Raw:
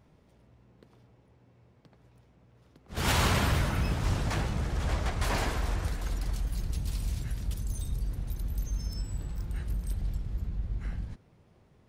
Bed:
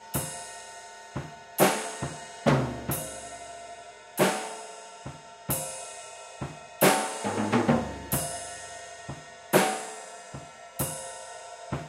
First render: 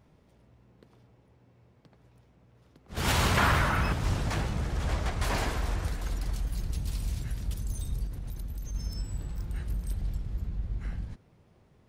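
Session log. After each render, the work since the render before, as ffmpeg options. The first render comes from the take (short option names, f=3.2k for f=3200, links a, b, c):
-filter_complex "[0:a]asettb=1/sr,asplit=3[a][b][c];[a]atrim=end=3.374[d];[b]atrim=start=3.37:end=3.93,asetpts=PTS-STARTPTS,afade=t=in:d=0.004:c=qsin,afade=t=out:st=0.556:d=0.004:c=qsin,equalizer=f=1.3k:w=0.81:g=10[e];[c]atrim=start=3.926[f];[d][e]acrossfade=d=0.004:c1=hsin:c2=qsin[g];[g][f]acrossfade=d=0.004:c1=qsin:c2=hsin,asettb=1/sr,asplit=3[h][i][j];[h]atrim=end=8.054[k];[i]atrim=start=8.05:end=8.75,asetpts=PTS-STARTPTS,afade=t=in:d=0.004:c=qsin,afade=t=out:st=0.696:d=0.004:c=qsin,acompressor=threshold=-32dB:ratio=6:attack=3.2:release=140:knee=1:detection=peak[l];[j]atrim=start=8.746[m];[k][l]acrossfade=d=0.004:c1=hsin:c2=qsin[n];[n][m]acrossfade=d=0.004:c1=qsin:c2=hsin"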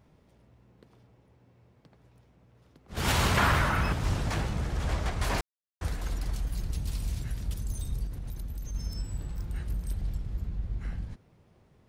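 -filter_complex "[0:a]asplit=3[a][b][c];[a]atrim=end=5.41,asetpts=PTS-STARTPTS,afade=t=out:st=5.406:d=0.004:c=hsin[d];[b]atrim=start=5.41:end=5.81,asetpts=PTS-STARTPTS,volume=0[e];[c]atrim=start=5.81,asetpts=PTS-STARTPTS,afade=t=in:d=0.004:c=hsin[f];[d][e][f]concat=n=3:v=0:a=1"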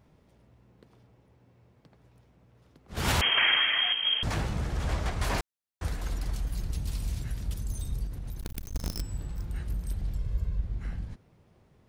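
-filter_complex "[0:a]asettb=1/sr,asplit=3[a][b][c];[a]atrim=end=3.214[d];[b]atrim=start=3.21:end=4.23,asetpts=PTS-STARTPTS,afade=t=in:d=0.004:c=qsin,afade=t=out:st=1.016:d=0.004:c=qsin,lowpass=f=2.8k:t=q:w=0.5098,lowpass=f=2.8k:t=q:w=0.6013,lowpass=f=2.8k:t=q:w=0.9,lowpass=f=2.8k:t=q:w=2.563,afreqshift=-3300[e];[c]atrim=start=4.226[f];[d][e]acrossfade=d=0.004:c1=hsin:c2=qsin[g];[g][f]acrossfade=d=0.004:c1=qsin:c2=hsin,asettb=1/sr,asplit=3[h][i][j];[h]atrim=end=8.404[k];[i]atrim=start=8.4:end=9.02,asetpts=PTS-STARTPTS,afade=t=in:d=0.004:c=qsin,afade=t=out:st=0.616:d=0.004:c=qsin,acrusher=bits=6:dc=4:mix=0:aa=0.000001[l];[j]atrim=start=9.016[m];[k][l]acrossfade=d=0.004:c1=hsin:c2=qsin[n];[n][m]acrossfade=d=0.004:c1=qsin:c2=hsin,asettb=1/sr,asplit=3[o][p][q];[o]atrim=end=10.174[r];[p]atrim=start=10.17:end=10.61,asetpts=PTS-STARTPTS,afade=t=in:d=0.004:c=qsin,afade=t=out:st=0.436:d=0.004:c=qsin,aecho=1:1:1.9:0.65,atrim=end_sample=19404[s];[q]atrim=start=10.606[t];[r][s]acrossfade=d=0.004:c1=hsin:c2=qsin[u];[u][t]acrossfade=d=0.004:c1=qsin:c2=hsin"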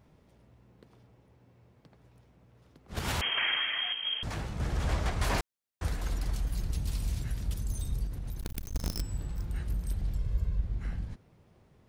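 -filter_complex "[0:a]asplit=3[a][b][c];[a]atrim=end=2.992[d];[b]atrim=start=2.988:end=4.602,asetpts=PTS-STARTPTS,volume=-6dB[e];[c]atrim=start=4.598[f];[d][e]acrossfade=d=0.004:c1=hsin:c2=hsin[g];[g][f]acrossfade=d=0.004:c1=hsin:c2=hsin"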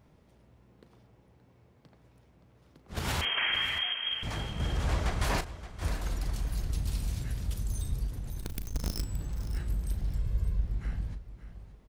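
-filter_complex "[0:a]asplit=2[a][b];[b]adelay=37,volume=-12dB[c];[a][c]amix=inputs=2:normalize=0,aecho=1:1:573|1146|1719:0.2|0.0539|0.0145"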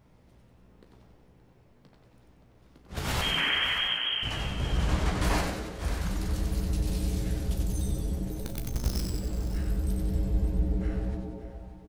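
-filter_complex "[0:a]asplit=2[a][b];[b]adelay=16,volume=-8dB[c];[a][c]amix=inputs=2:normalize=0,asplit=9[d][e][f][g][h][i][j][k][l];[e]adelay=93,afreqshift=-120,volume=-4dB[m];[f]adelay=186,afreqshift=-240,volume=-8.6dB[n];[g]adelay=279,afreqshift=-360,volume=-13.2dB[o];[h]adelay=372,afreqshift=-480,volume=-17.7dB[p];[i]adelay=465,afreqshift=-600,volume=-22.3dB[q];[j]adelay=558,afreqshift=-720,volume=-26.9dB[r];[k]adelay=651,afreqshift=-840,volume=-31.5dB[s];[l]adelay=744,afreqshift=-960,volume=-36.1dB[t];[d][m][n][o][p][q][r][s][t]amix=inputs=9:normalize=0"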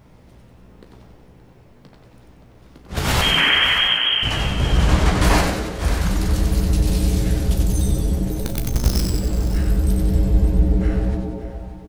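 -af "volume=11dB"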